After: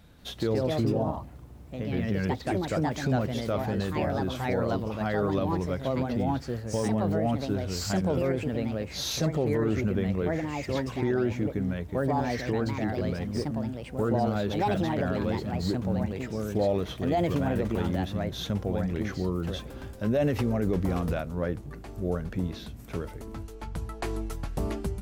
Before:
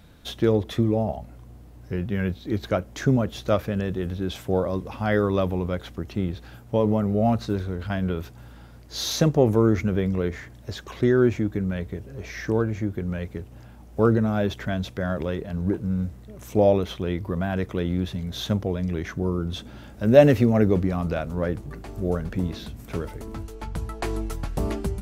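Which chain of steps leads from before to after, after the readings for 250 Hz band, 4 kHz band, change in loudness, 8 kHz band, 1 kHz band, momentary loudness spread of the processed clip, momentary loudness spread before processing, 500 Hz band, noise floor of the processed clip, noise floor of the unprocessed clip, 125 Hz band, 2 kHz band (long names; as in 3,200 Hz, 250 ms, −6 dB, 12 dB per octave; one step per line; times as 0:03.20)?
−4.0 dB, −2.5 dB, −4.5 dB, −1.5 dB, −0.5 dB, 9 LU, 15 LU, −5.0 dB, −44 dBFS, −46 dBFS, −4.0 dB, −3.0 dB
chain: delay with pitch and tempo change per echo 187 ms, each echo +3 semitones, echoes 2
brickwall limiter −13.5 dBFS, peak gain reduction 11.5 dB
level −4 dB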